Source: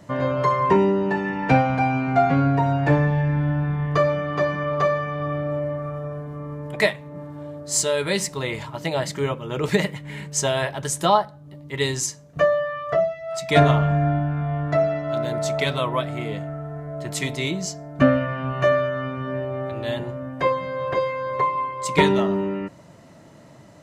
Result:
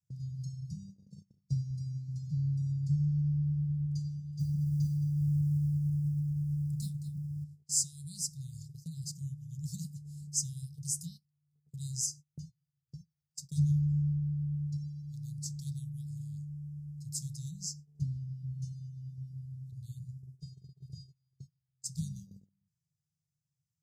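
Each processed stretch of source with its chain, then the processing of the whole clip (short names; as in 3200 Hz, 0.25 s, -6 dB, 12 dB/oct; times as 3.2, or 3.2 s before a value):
4.39–7.44 low shelf 320 Hz +11 dB + companded quantiser 8-bit + echo 0.217 s -13 dB
20.55–21.17 low shelf 190 Hz +4 dB + notches 50/100/150/200/250/300/350/400/450/500 Hz
whole clip: Chebyshev band-stop 160–4900 Hz, order 5; gate -39 dBFS, range -26 dB; low shelf 70 Hz -7.5 dB; gain -6.5 dB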